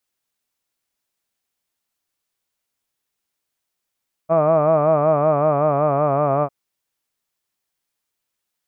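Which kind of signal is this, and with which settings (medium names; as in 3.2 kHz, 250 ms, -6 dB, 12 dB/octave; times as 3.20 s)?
formant-synthesis vowel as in hud, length 2.20 s, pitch 158 Hz, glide -2 st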